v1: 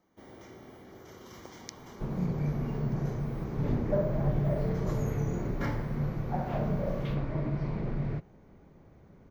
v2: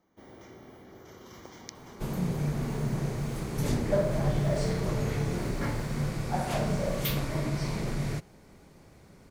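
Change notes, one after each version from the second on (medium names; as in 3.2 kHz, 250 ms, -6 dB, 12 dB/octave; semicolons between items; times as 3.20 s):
second sound: remove tape spacing loss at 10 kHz 44 dB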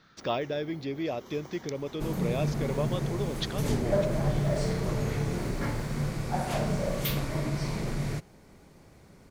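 speech: unmuted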